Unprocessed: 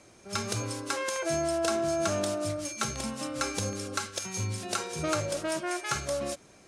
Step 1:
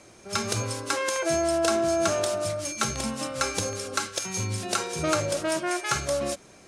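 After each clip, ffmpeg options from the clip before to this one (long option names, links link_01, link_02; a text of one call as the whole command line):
ffmpeg -i in.wav -af "bandreject=frequency=50:width_type=h:width=6,bandreject=frequency=100:width_type=h:width=6,bandreject=frequency=150:width_type=h:width=6,bandreject=frequency=200:width_type=h:width=6,bandreject=frequency=250:width_type=h:width=6,bandreject=frequency=300:width_type=h:width=6,volume=4.5dB" out.wav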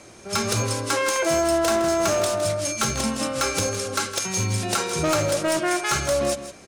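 ffmpeg -i in.wav -af "acontrast=34,asoftclip=type=hard:threshold=-17.5dB,aecho=1:1:161:0.251" out.wav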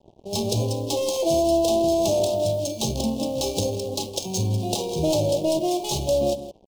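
ffmpeg -i in.wav -af "adynamicsmooth=sensitivity=5:basefreq=630,acrusher=bits=6:mix=0:aa=0.5,asuperstop=centerf=1600:order=8:qfactor=0.73,volume=1.5dB" out.wav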